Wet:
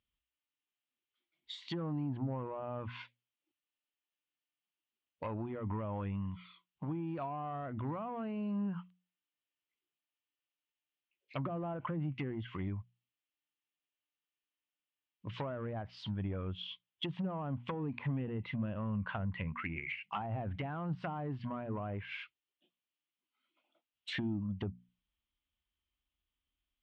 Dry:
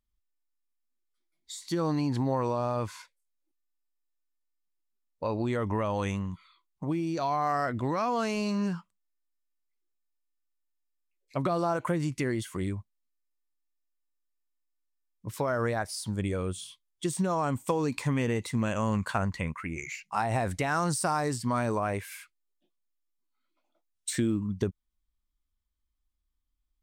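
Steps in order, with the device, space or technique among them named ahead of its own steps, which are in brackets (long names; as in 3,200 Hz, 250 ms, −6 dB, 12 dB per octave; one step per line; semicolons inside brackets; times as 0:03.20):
overdriven synthesiser ladder filter (soft clipping −24 dBFS, distortion −14 dB; transistor ladder low-pass 3,300 Hz, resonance 65%)
treble cut that deepens with the level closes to 660 Hz, closed at −38 dBFS
high-pass filter 63 Hz
mains-hum notches 60/120/180/240 Hz
dynamic equaliser 440 Hz, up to −8 dB, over −58 dBFS, Q 0.99
level +9 dB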